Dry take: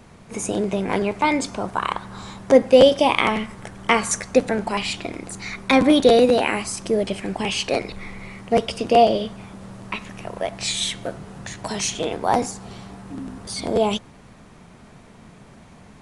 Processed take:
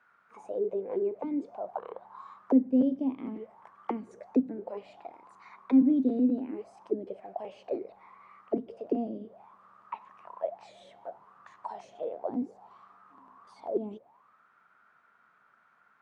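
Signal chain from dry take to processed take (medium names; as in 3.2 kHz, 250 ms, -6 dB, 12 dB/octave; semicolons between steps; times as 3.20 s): auto-wah 260–1500 Hz, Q 9.5, down, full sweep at -15.5 dBFS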